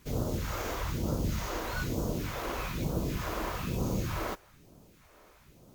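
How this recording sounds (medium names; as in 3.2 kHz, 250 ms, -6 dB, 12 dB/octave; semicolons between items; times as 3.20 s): phasing stages 2, 1.1 Hz, lowest notch 130–2000 Hz; a quantiser's noise floor 12-bit, dither triangular; WMA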